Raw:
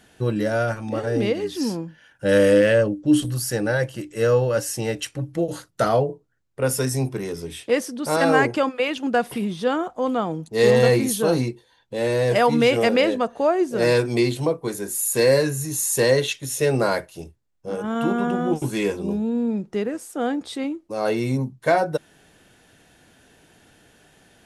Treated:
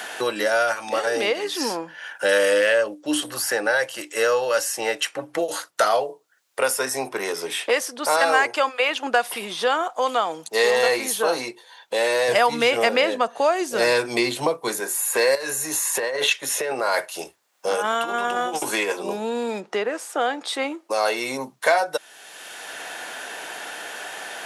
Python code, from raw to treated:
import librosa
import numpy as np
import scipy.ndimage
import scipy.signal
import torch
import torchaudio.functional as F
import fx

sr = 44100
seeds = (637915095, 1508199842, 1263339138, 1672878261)

y = fx.bass_treble(x, sr, bass_db=15, treble_db=0, at=(12.28, 14.8))
y = fx.over_compress(y, sr, threshold_db=-25.0, ratio=-1.0, at=(15.35, 18.92))
y = fx.lowpass(y, sr, hz=fx.line((19.59, 1700.0), (20.47, 3000.0)), slope=6, at=(19.59, 20.47), fade=0.02)
y = scipy.signal.sosfilt(scipy.signal.cheby1(2, 1.0, 800.0, 'highpass', fs=sr, output='sos'), y)
y = fx.band_squash(y, sr, depth_pct=70)
y = F.gain(torch.from_numpy(y), 5.5).numpy()